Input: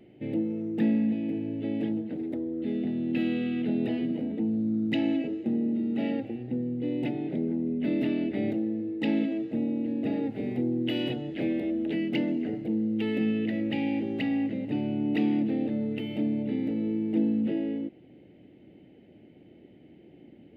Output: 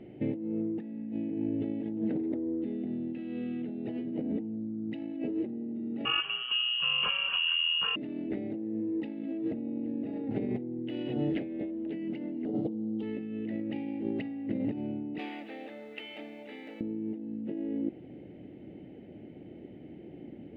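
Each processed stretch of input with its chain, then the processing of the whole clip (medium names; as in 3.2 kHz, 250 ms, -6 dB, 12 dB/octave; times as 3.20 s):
6.05–7.96 s: high-pass 60 Hz + high-order bell 1.4 kHz +14.5 dB 1.1 oct + frequency inversion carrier 3.1 kHz
12.45–13.03 s: high-pass 160 Hz + high-order bell 2 kHz -15.5 dB 1 oct + flutter echo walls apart 9.2 m, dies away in 0.37 s
15.18–16.81 s: high-pass 1.1 kHz + word length cut 12-bit, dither triangular
whole clip: low-pass 1.7 kHz 6 dB/octave; dynamic bell 330 Hz, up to +3 dB, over -35 dBFS, Q 1.5; compressor with a negative ratio -34 dBFS, ratio -1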